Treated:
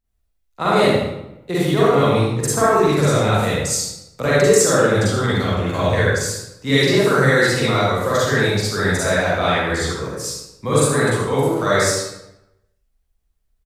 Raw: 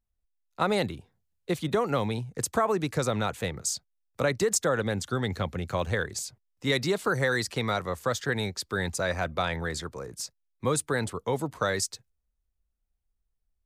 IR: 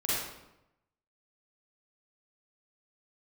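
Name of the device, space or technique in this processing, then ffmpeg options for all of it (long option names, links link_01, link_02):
bathroom: -filter_complex "[1:a]atrim=start_sample=2205[link_01];[0:a][link_01]afir=irnorm=-1:irlink=0,aecho=1:1:75:0.398,volume=2.5dB"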